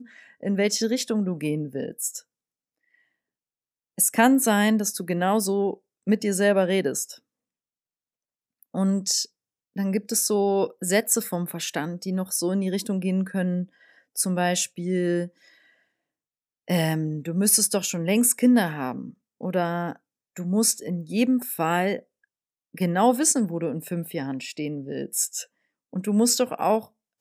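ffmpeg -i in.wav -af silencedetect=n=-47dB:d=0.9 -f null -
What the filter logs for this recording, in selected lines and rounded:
silence_start: 2.21
silence_end: 3.98 | silence_duration: 1.77
silence_start: 7.18
silence_end: 8.63 | silence_duration: 1.45
silence_start: 15.54
silence_end: 16.68 | silence_duration: 1.14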